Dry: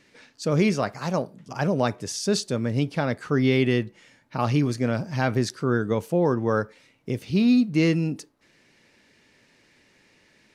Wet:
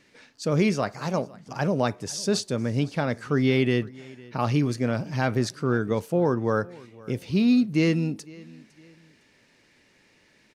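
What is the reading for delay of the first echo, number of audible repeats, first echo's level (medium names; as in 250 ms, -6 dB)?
507 ms, 2, -22.5 dB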